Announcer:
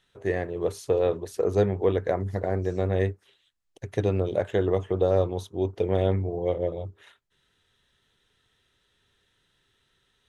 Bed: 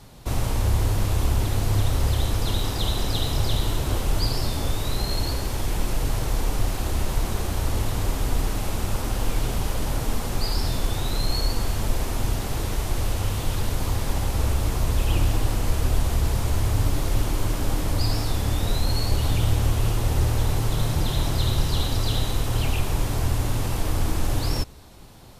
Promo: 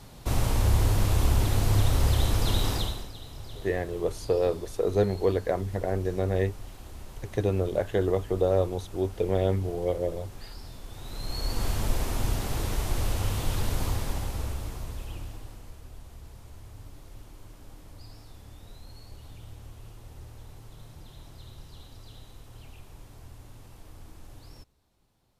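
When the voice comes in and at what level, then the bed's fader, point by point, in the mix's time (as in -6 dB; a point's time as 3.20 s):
3.40 s, -1.5 dB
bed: 2.75 s -1 dB
3.13 s -18.5 dB
10.85 s -18.5 dB
11.65 s -3 dB
13.83 s -3 dB
15.82 s -24 dB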